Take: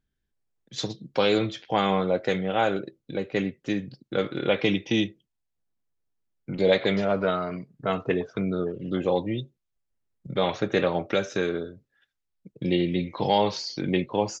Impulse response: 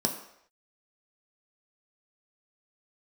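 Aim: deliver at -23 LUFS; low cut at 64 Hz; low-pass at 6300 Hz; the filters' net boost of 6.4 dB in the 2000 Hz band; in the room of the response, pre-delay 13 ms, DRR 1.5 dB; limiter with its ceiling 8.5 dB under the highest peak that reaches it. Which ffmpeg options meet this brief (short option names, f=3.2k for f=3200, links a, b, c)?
-filter_complex "[0:a]highpass=64,lowpass=6.3k,equalizer=f=2k:t=o:g=8,alimiter=limit=-12.5dB:level=0:latency=1,asplit=2[a][b];[1:a]atrim=start_sample=2205,adelay=13[c];[b][c]afir=irnorm=-1:irlink=0,volume=-9dB[d];[a][d]amix=inputs=2:normalize=0,volume=-1dB"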